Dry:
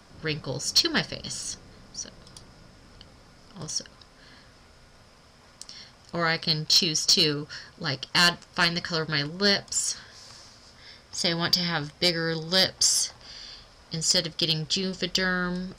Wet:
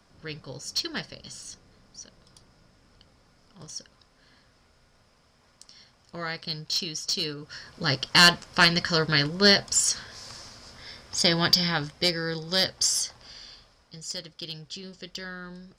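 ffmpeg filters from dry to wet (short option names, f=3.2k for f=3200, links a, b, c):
-af "volume=4dB,afade=t=in:st=7.38:d=0.53:silence=0.251189,afade=t=out:st=11.19:d=1.02:silence=0.473151,afade=t=out:st=13.38:d=0.56:silence=0.316228"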